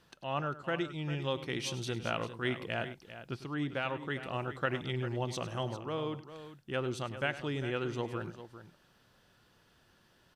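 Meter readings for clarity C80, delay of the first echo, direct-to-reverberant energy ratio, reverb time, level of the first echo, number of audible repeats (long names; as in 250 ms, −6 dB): no reverb audible, 101 ms, no reverb audible, no reverb audible, −15.0 dB, 2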